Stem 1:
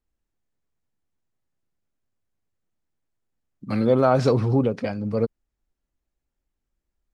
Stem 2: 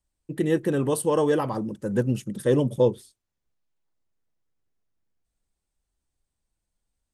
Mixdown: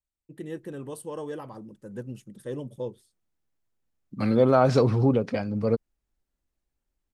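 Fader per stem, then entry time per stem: -1.0, -13.5 dB; 0.50, 0.00 s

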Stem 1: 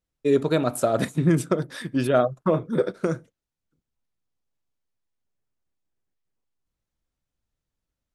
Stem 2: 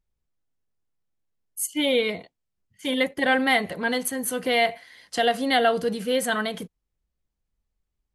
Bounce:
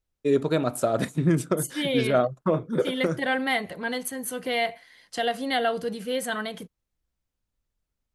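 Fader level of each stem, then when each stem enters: -2.0, -4.5 dB; 0.00, 0.00 s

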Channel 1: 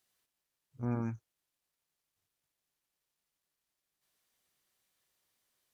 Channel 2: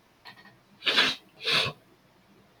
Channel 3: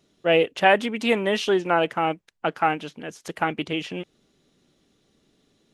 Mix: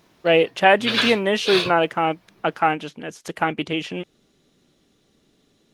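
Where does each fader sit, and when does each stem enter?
-4.5, +1.5, +2.5 dB; 0.00, 0.00, 0.00 s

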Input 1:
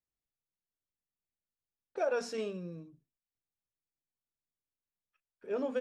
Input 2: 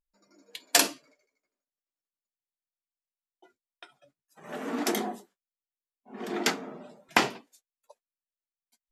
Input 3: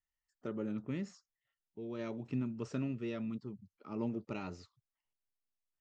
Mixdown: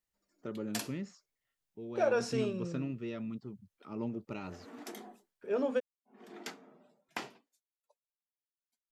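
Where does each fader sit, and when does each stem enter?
+2.5, -17.5, -0.5 dB; 0.00, 0.00, 0.00 s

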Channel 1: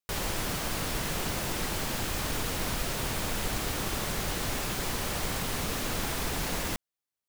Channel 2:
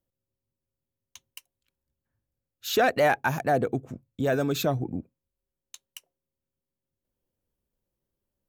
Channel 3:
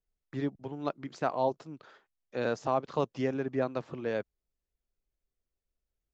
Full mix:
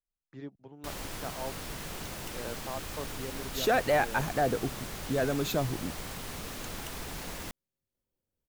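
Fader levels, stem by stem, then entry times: -8.0, -4.0, -10.5 dB; 0.75, 0.90, 0.00 s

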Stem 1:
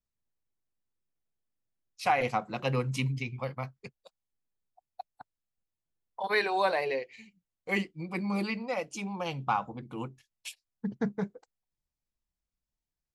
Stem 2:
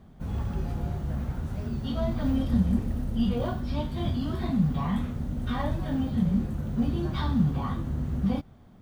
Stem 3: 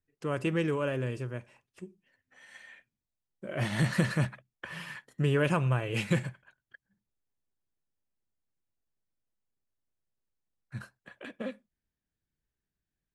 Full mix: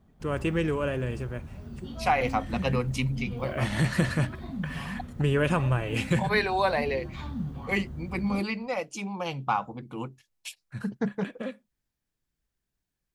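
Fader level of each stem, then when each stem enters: +2.0, -9.5, +2.0 dB; 0.00, 0.00, 0.00 s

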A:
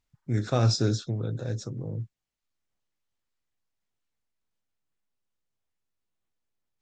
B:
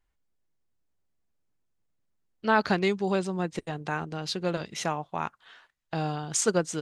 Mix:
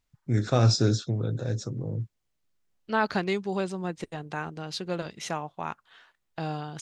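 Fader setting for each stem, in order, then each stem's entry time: +2.0, -2.5 dB; 0.00, 0.45 s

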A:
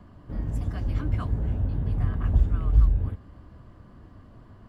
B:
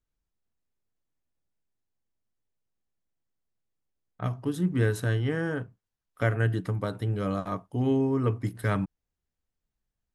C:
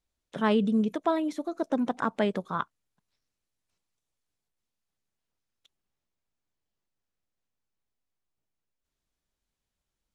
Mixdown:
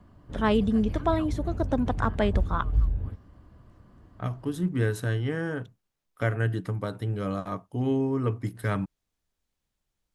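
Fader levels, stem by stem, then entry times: -5.0, -1.0, +1.0 dB; 0.00, 0.00, 0.00 s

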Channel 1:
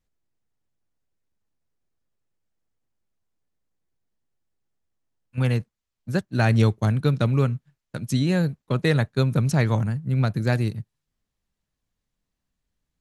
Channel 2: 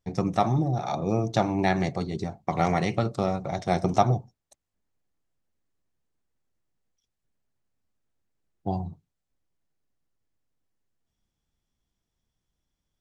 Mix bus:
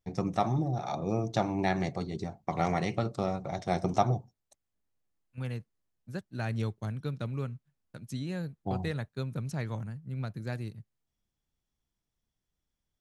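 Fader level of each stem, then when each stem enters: -14.0, -5.0 dB; 0.00, 0.00 s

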